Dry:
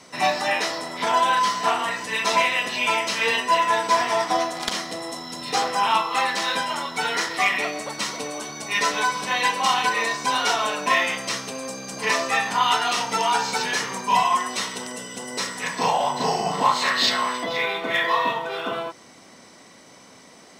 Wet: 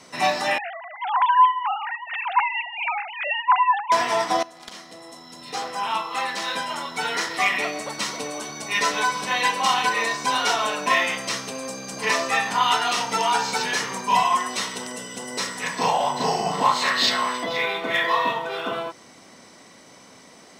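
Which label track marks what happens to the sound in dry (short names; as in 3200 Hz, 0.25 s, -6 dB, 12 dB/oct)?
0.580000	3.920000	sine-wave speech
4.430000	7.630000	fade in, from -17 dB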